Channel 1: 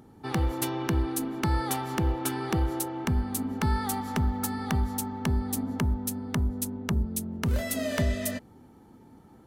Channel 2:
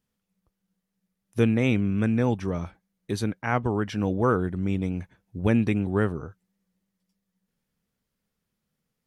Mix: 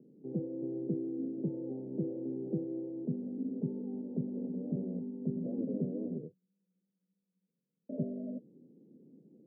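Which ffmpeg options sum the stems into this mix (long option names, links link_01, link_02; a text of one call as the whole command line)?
ffmpeg -i stem1.wav -i stem2.wav -filter_complex "[0:a]volume=-4.5dB,asplit=3[link_01][link_02][link_03];[link_01]atrim=end=6.18,asetpts=PTS-STARTPTS,afade=type=out:start_time=6.176:duration=0.004:curve=hsin[link_04];[link_02]atrim=start=6.18:end=7.89,asetpts=PTS-STARTPTS,volume=0[link_05];[link_03]atrim=start=7.89,asetpts=PTS-STARTPTS,afade=type=in:duration=0.004:curve=hsin[link_06];[link_04][link_05][link_06]concat=n=3:v=0:a=1[link_07];[1:a]aeval=exprs='0.0447*(abs(mod(val(0)/0.0447+3,4)-2)-1)':channel_layout=same,volume=-4.5dB,afade=type=in:start_time=4.2:duration=0.69:silence=0.251189[link_08];[link_07][link_08]amix=inputs=2:normalize=0,asuperpass=centerf=280:order=12:qfactor=0.68" out.wav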